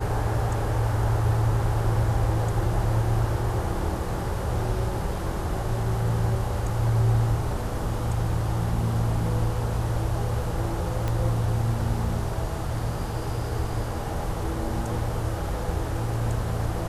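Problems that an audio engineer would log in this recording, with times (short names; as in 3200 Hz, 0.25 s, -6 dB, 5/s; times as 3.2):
11.08 pop -15 dBFS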